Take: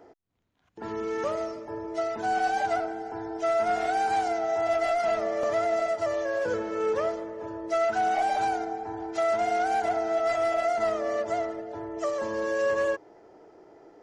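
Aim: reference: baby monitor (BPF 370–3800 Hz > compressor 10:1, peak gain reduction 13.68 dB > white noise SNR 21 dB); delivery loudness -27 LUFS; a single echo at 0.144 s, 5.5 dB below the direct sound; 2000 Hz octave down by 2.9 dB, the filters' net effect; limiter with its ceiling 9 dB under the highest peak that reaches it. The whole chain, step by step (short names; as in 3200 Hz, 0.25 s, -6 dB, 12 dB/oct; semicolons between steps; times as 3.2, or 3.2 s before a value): bell 2000 Hz -3.5 dB; limiter -27.5 dBFS; BPF 370–3800 Hz; echo 0.144 s -5.5 dB; compressor 10:1, threshold -41 dBFS; white noise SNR 21 dB; gain +17.5 dB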